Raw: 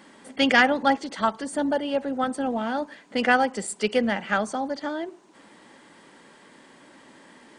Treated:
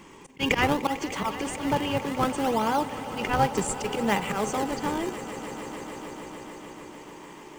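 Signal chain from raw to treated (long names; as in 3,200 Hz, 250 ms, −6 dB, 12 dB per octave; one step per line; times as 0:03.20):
volume swells 131 ms
EQ curve with evenly spaced ripples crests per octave 0.74, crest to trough 11 dB
in parallel at −5.5 dB: sample-and-hold swept by an LFO 37×, swing 160% 0.65 Hz
on the sum: echo that builds up and dies away 149 ms, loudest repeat 5, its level −17 dB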